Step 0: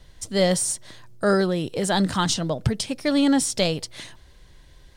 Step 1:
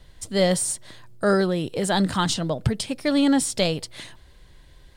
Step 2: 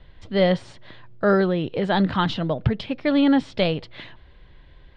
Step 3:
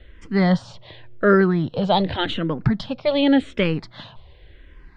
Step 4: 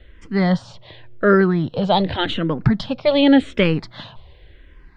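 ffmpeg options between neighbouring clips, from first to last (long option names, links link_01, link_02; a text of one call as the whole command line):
ffmpeg -i in.wav -af "equalizer=frequency=5900:width=3.4:gain=-5" out.wav
ffmpeg -i in.wav -af "lowpass=frequency=3400:width=0.5412,lowpass=frequency=3400:width=1.3066,volume=1.5dB" out.wav
ffmpeg -i in.wav -filter_complex "[0:a]asplit=2[link_01][link_02];[link_02]afreqshift=-0.88[link_03];[link_01][link_03]amix=inputs=2:normalize=1,volume=5.5dB" out.wav
ffmpeg -i in.wav -af "dynaudnorm=framelen=220:gausssize=9:maxgain=5dB" out.wav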